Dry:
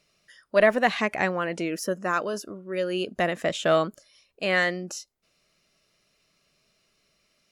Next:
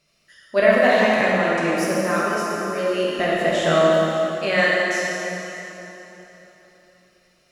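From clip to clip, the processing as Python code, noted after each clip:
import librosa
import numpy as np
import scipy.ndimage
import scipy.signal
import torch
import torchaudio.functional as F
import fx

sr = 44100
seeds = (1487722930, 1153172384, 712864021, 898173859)

y = fx.rev_plate(x, sr, seeds[0], rt60_s=3.6, hf_ratio=0.8, predelay_ms=0, drr_db=-6.5)
y = y * 10.0 ** (-1.0 / 20.0)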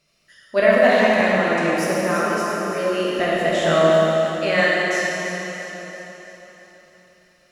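y = fx.echo_alternate(x, sr, ms=168, hz=1100.0, feedback_pct=73, wet_db=-8)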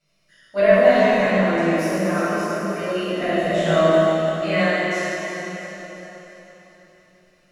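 y = fx.room_shoebox(x, sr, seeds[1], volume_m3=720.0, walls='furnished', distance_m=7.4)
y = y * 10.0 ** (-12.0 / 20.0)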